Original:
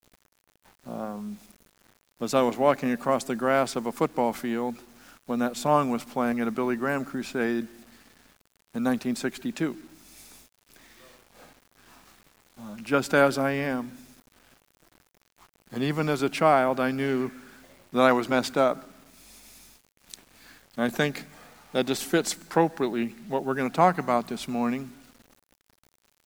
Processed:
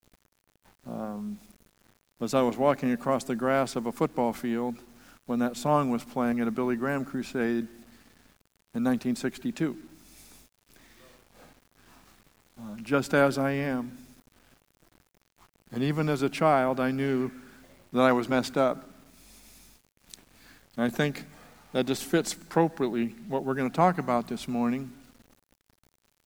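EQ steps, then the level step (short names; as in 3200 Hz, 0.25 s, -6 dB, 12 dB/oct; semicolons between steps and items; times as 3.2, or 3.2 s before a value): low shelf 290 Hz +6 dB; -3.5 dB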